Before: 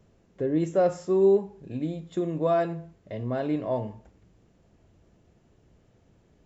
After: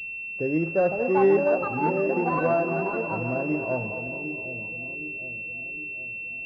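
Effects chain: split-band echo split 540 Hz, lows 0.762 s, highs 0.221 s, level -8.5 dB; echoes that change speed 0.644 s, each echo +7 st, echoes 2; pulse-width modulation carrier 2700 Hz

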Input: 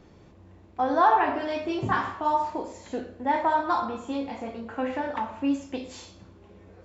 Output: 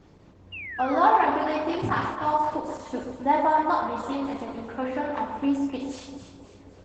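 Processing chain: 0.52–1.29 painted sound fall 560–2900 Hz -37 dBFS; 2.47–3.7 comb 3.4 ms, depth 39%; echo with dull and thin repeats by turns 0.13 s, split 1000 Hz, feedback 68%, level -6 dB; reverb RT60 0.45 s, pre-delay 7 ms, DRR 15.5 dB; Opus 12 kbps 48000 Hz

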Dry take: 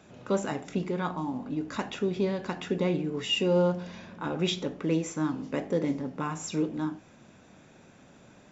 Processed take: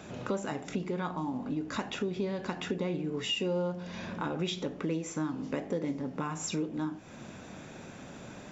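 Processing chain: compressor 3:1, threshold -43 dBFS, peak gain reduction 16.5 dB; gain +8.5 dB

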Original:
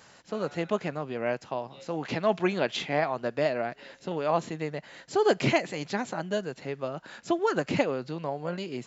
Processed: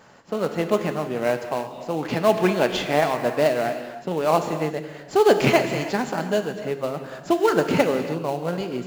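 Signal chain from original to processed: rattling part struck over -24 dBFS, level -17 dBFS; low shelf 110 Hz -5.5 dB; notch 3900 Hz, Q 17; in parallel at -9 dB: sample-rate reducer 3400 Hz, jitter 20%; on the sum: non-linear reverb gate 0.35 s flat, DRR 7 dB; mismatched tape noise reduction decoder only; gain +4.5 dB

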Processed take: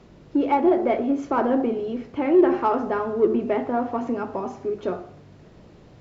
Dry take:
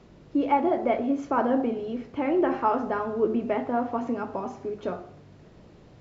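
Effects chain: dynamic EQ 370 Hz, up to +8 dB, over -40 dBFS, Q 3.9; in parallel at -9 dB: soft clip -23.5 dBFS, distortion -7 dB

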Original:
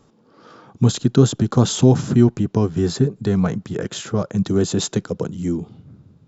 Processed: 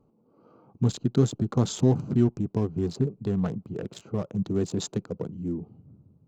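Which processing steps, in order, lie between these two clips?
Wiener smoothing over 25 samples; gain -8 dB

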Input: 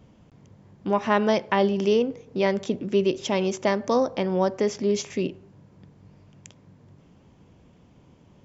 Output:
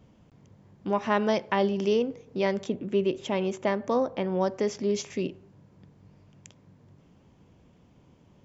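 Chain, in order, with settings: 2.67–4.41 bell 5300 Hz -10 dB 0.78 oct; gain -3.5 dB

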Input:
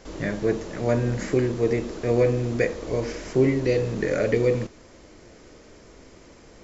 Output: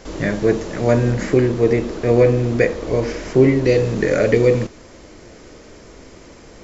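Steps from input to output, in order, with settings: 1.12–3.66 high shelf 6800 Hz -8 dB; gain +7 dB

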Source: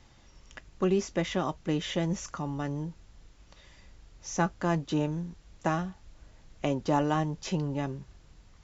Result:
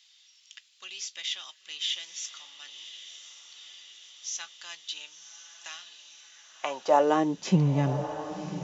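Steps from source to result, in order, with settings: high-pass sweep 3400 Hz -> 140 Hz, 6.01–7.68; diffused feedback echo 1.058 s, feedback 62%, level -11 dB; gain +2 dB

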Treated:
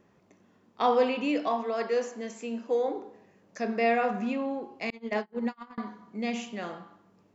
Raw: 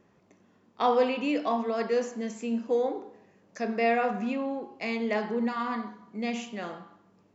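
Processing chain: 1.48–2.88 tone controls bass -10 dB, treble -1 dB; 4.9–5.78 gate -27 dBFS, range -36 dB

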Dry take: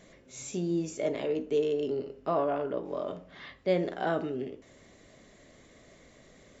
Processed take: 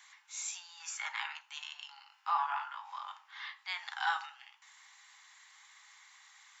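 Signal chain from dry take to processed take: 3.84–4.26 dynamic EQ 5400 Hz, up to +7 dB, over -54 dBFS, Q 0.71; Chebyshev high-pass 810 Hz, order 8; 0.8–1.41 bell 1500 Hz +9.5 dB 0.93 oct; 2.1–2.98 doubler 20 ms -2.5 dB; gain +3.5 dB

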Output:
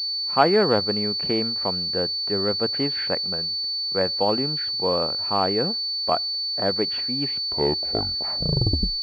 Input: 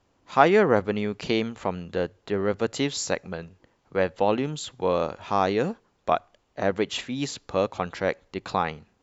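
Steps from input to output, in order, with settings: tape stop at the end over 1.81 s; pulse-width modulation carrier 4500 Hz

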